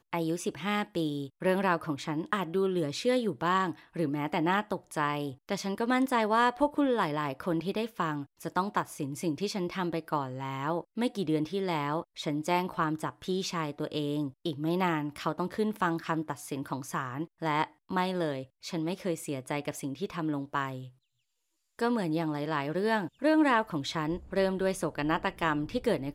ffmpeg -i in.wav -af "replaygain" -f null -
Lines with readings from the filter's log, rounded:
track_gain = +11.0 dB
track_peak = 0.151